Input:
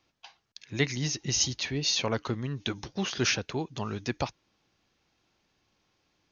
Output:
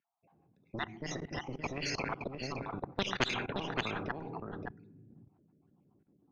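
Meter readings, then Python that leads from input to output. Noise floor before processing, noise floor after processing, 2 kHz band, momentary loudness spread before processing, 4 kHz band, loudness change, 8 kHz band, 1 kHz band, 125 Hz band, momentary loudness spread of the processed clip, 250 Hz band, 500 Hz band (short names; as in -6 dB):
-74 dBFS, -73 dBFS, -3.5 dB, 9 LU, -9.5 dB, -7.5 dB, n/a, 0.0 dB, -9.0 dB, 11 LU, -6.5 dB, -5.0 dB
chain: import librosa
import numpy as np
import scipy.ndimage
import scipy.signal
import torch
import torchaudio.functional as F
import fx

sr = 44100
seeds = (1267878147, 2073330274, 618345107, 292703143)

y = fx.spec_dropout(x, sr, seeds[0], share_pct=54)
y = scipy.signal.sosfilt(scipy.signal.butter(2, 170.0, 'highpass', fs=sr, output='sos'), y)
y = fx.low_shelf(y, sr, hz=400.0, db=11.0)
y = fx.room_shoebox(y, sr, seeds[1], volume_m3=420.0, walls='mixed', distance_m=0.3)
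y = fx.env_lowpass(y, sr, base_hz=350.0, full_db=-16.0)
y = fx.cheby_harmonics(y, sr, harmonics=(4, 7, 8), levels_db=(-42, -32, -29), full_scale_db=-7.0)
y = fx.level_steps(y, sr, step_db=23)
y = fx.high_shelf(y, sr, hz=5000.0, db=-8.0)
y = y + 10.0 ** (-11.5 / 20.0) * np.pad(y, (int(570 * sr / 1000.0), 0))[:len(y)]
y = fx.spectral_comp(y, sr, ratio=4.0)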